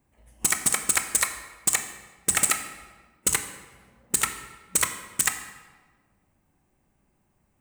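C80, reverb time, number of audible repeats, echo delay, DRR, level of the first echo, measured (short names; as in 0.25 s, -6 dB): 10.5 dB, 1.4 s, none, none, 7.5 dB, none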